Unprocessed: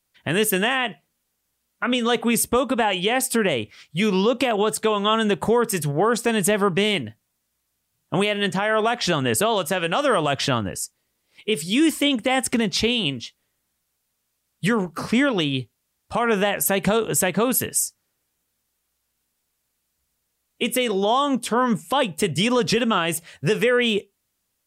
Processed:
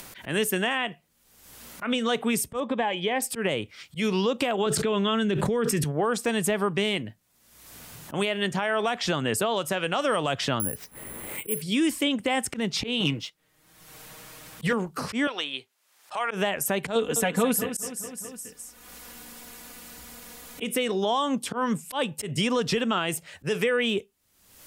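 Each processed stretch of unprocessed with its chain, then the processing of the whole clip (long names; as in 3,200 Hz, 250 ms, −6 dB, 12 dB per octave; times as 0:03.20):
0:02.60–0:03.22: high-frequency loss of the air 130 metres + notch comb filter 1,400 Hz
0:04.66–0:05.84: low-pass filter 2,200 Hz 6 dB per octave + parametric band 850 Hz −11.5 dB 1.2 octaves + envelope flattener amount 100%
0:10.60–0:11.62: high-frequency loss of the air 420 metres + upward compression, threshold −25 dBFS + bad sample-rate conversion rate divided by 4×, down none, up zero stuff
0:13.00–0:14.73: bass and treble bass 0 dB, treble −4 dB + comb filter 6.4 ms, depth 62% + leveller curve on the samples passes 1
0:15.27–0:16.31: high-pass filter 740 Hz + high-shelf EQ 10,000 Hz −6.5 dB
0:16.95–0:20.64: comb filter 4.1 ms, depth 76% + repeating echo 209 ms, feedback 41%, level −12 dB
whole clip: upward compression, threshold −26 dBFS; volume swells 110 ms; multiband upward and downward compressor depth 40%; level −5 dB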